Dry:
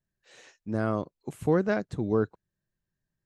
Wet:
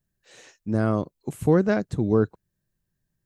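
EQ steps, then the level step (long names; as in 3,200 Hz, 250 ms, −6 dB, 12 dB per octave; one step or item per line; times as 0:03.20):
low-shelf EQ 400 Hz +6 dB
high-shelf EQ 6,700 Hz +8.5 dB
+1.5 dB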